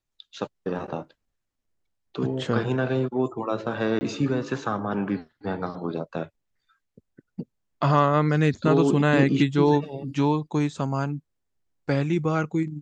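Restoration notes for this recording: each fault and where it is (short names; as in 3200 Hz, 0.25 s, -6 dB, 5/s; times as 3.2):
3.99–4.01 gap 20 ms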